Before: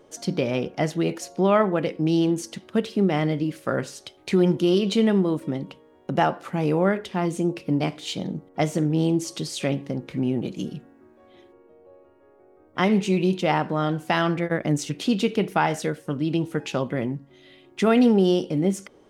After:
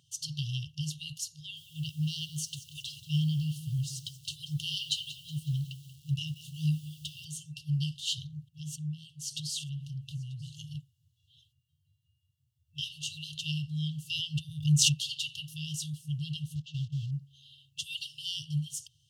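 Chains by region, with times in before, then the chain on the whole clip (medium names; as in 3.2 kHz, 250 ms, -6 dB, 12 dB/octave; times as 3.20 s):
1.31–7.25 s: bass shelf 450 Hz +4 dB + bit-crushed delay 184 ms, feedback 55%, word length 7-bit, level -14.5 dB
8.24–10.75 s: compression, threshold -31 dBFS + small resonant body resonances 340/1200 Hz, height 18 dB, ringing for 20 ms + delay 937 ms -24 dB
14.19–15.00 s: peaking EQ 590 Hz +14.5 dB 2.5 oct + swell ahead of each attack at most 43 dB/s
16.55–17.12 s: block-companded coder 5-bit + distance through air 160 m + gate -33 dBFS, range -9 dB
whole clip: FFT band-reject 160–2700 Hz; high-pass 81 Hz 24 dB/octave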